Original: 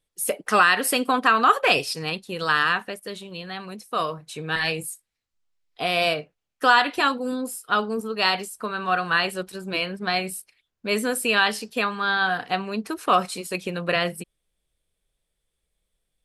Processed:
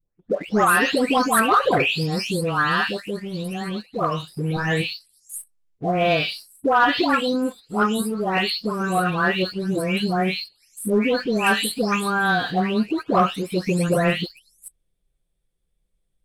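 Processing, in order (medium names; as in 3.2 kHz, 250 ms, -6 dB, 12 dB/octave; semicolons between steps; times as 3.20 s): delay that grows with frequency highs late, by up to 480 ms; bass shelf 430 Hz +12 dB; waveshaping leveller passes 1; trim -3 dB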